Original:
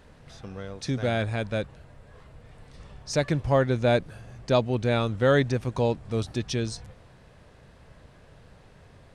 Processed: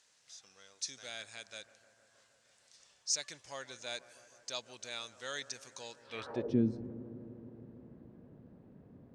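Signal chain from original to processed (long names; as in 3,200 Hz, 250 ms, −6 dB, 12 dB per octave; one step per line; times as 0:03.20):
bucket-brigade delay 156 ms, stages 2,048, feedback 80%, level −17.5 dB
band-pass filter sweep 6,600 Hz → 240 Hz, 0:05.99–0:06.56
level +5 dB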